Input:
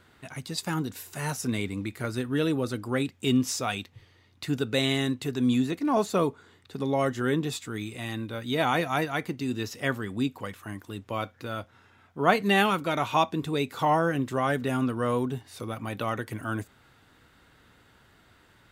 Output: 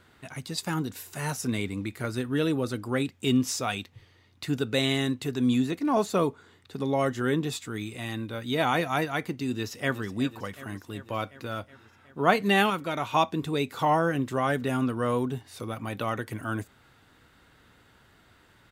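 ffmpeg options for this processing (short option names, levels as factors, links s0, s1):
-filter_complex "[0:a]asplit=2[s0][s1];[s1]afade=t=in:st=9.5:d=0.01,afade=t=out:st=10.03:d=0.01,aecho=0:1:370|740|1110|1480|1850|2220|2590|2960|3330:0.188365|0.131855|0.0922988|0.0646092|0.0452264|0.0316585|0.0221609|0.0155127|0.0108589[s2];[s0][s2]amix=inputs=2:normalize=0,asplit=3[s3][s4][s5];[s3]atrim=end=12.702[s6];[s4]atrim=start=12.698:end=13.142,asetpts=PTS-STARTPTS,volume=0.708[s7];[s5]atrim=start=13.138[s8];[s6][s7]acrossfade=d=0.004:c1=hsin:c2=hsin[s9];[s9][s8]acrossfade=d=0.004:c1=hsin:c2=hsin"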